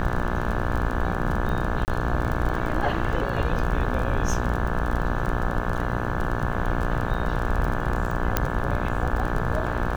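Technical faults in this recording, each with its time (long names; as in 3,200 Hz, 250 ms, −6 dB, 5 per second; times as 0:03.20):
mains buzz 60 Hz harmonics 29 −29 dBFS
surface crackle 27 per second −27 dBFS
0:01.85–0:01.88: drop-out 29 ms
0:08.37: click −5 dBFS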